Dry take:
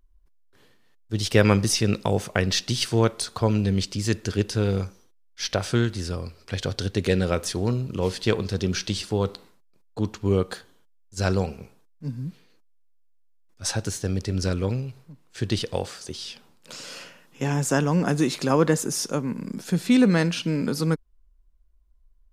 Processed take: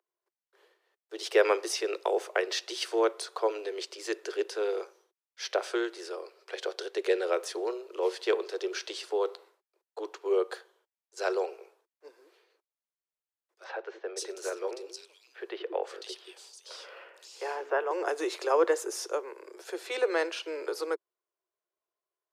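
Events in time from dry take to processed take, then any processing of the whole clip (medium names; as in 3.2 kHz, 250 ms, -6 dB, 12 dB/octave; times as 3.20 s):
13.64–17.91 s: three bands offset in time mids, lows, highs 180/520 ms, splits 320/3000 Hz
whole clip: steep high-pass 350 Hz 96 dB/octave; treble shelf 2.7 kHz -9.5 dB; trim -1.5 dB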